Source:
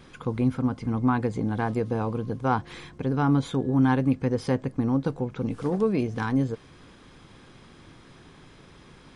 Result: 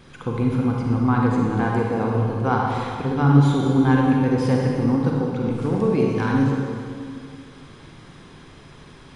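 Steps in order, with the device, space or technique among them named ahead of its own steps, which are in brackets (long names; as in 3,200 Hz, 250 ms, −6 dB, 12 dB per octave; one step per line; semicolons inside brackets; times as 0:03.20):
stairwell (convolution reverb RT60 2.2 s, pre-delay 37 ms, DRR −2 dB)
level +1.5 dB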